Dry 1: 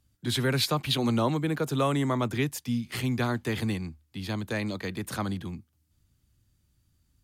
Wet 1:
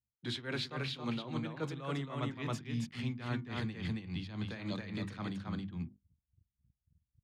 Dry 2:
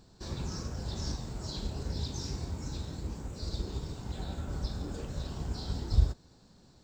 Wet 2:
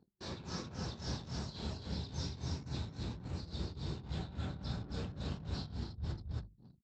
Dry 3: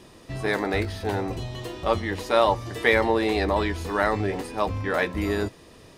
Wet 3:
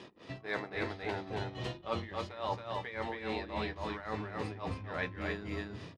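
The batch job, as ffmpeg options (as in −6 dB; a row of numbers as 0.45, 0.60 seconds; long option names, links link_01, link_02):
-af "highpass=130,lowpass=3800,highshelf=frequency=2100:gain=6,aecho=1:1:273:0.668,flanger=delay=10:depth=3.7:regen=-79:speed=0.38:shape=triangular,asubboost=boost=3.5:cutoff=190,areverse,acompressor=threshold=-36dB:ratio=6,areverse,tremolo=f=3.6:d=0.77,bandreject=frequency=50:width_type=h:width=6,bandreject=frequency=100:width_type=h:width=6,bandreject=frequency=150:width_type=h:width=6,bandreject=frequency=200:width_type=h:width=6,bandreject=frequency=250:width_type=h:width=6,bandreject=frequency=300:width_type=h:width=6,bandreject=frequency=350:width_type=h:width=6,anlmdn=0.0000251,volume=4.5dB"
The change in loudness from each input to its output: −10.0, −5.5, −13.5 LU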